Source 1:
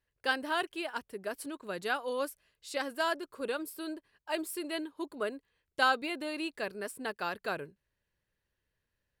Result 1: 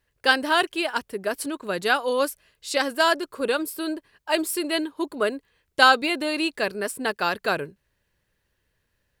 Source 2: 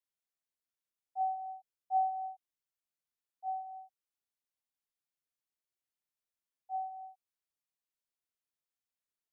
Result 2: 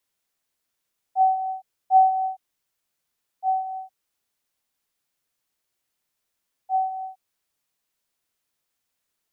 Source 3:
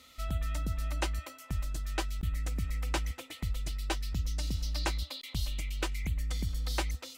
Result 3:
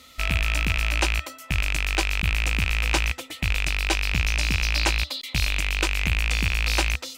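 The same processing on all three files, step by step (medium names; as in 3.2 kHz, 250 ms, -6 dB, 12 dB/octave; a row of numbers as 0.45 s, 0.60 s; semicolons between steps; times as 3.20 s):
rattle on loud lows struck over -38 dBFS, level -20 dBFS; dynamic bell 5.6 kHz, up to +4 dB, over -47 dBFS, Q 0.76; normalise loudness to -24 LUFS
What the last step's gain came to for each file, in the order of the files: +10.5 dB, +14.0 dB, +7.5 dB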